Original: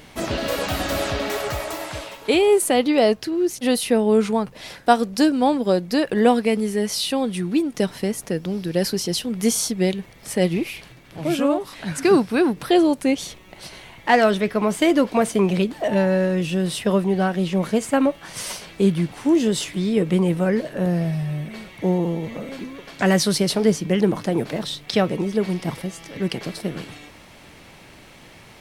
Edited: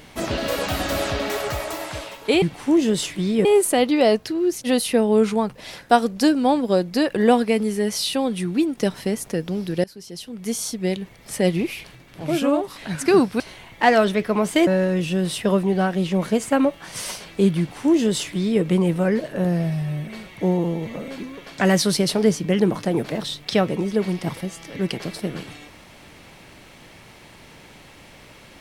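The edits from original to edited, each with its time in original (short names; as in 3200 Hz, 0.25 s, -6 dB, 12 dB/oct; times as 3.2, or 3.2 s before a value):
8.81–10.31 fade in, from -24 dB
12.37–13.66 cut
14.93–16.08 cut
19–20.03 copy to 2.42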